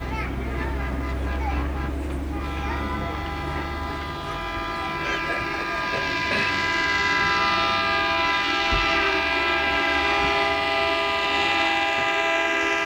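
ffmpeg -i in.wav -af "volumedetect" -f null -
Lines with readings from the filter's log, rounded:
mean_volume: -23.8 dB
max_volume: -6.6 dB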